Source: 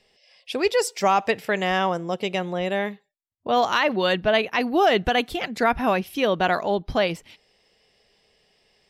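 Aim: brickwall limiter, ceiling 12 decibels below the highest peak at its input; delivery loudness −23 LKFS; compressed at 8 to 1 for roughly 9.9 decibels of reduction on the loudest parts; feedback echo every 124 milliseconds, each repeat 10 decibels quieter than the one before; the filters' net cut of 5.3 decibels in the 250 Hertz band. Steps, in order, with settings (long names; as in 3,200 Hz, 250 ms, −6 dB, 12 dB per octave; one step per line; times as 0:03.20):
parametric band 250 Hz −7.5 dB
downward compressor 8 to 1, threshold −26 dBFS
brickwall limiter −26 dBFS
repeating echo 124 ms, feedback 32%, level −10 dB
level +12.5 dB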